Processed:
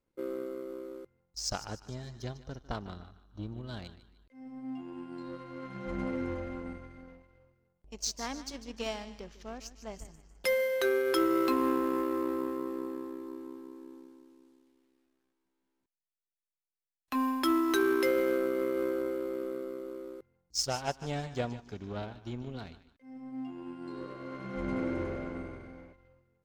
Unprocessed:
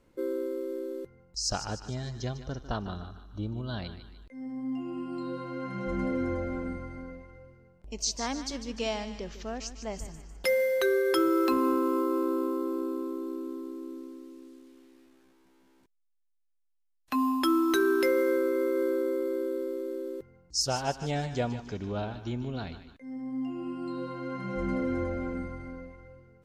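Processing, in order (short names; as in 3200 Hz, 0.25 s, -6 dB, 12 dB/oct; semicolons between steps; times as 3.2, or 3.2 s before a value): power-law curve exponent 1.4; 23.75–25.93 frequency-shifting echo 98 ms, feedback 44%, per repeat +65 Hz, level -7.5 dB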